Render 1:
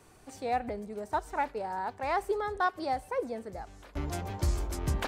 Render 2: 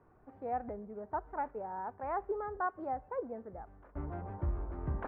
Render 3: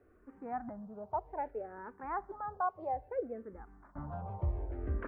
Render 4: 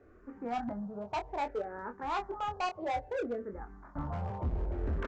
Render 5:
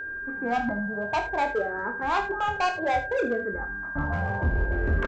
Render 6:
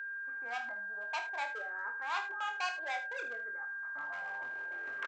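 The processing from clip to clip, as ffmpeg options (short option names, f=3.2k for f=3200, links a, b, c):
-af "lowpass=f=1.5k:w=0.5412,lowpass=f=1.5k:w=1.3066,volume=-5.5dB"
-filter_complex "[0:a]asplit=2[a][b];[b]afreqshift=-0.62[c];[a][c]amix=inputs=2:normalize=1,volume=2.5dB"
-filter_complex "[0:a]aresample=16000,asoftclip=type=hard:threshold=-36.5dB,aresample=44100,asplit=2[a][b];[b]adelay=25,volume=-6.5dB[c];[a][c]amix=inputs=2:normalize=0,volume=5.5dB"
-af "aecho=1:1:51|78:0.237|0.224,aeval=exprs='val(0)+0.01*sin(2*PI*1600*n/s)':c=same,volume=8dB"
-af "highpass=1.3k,volume=-5dB"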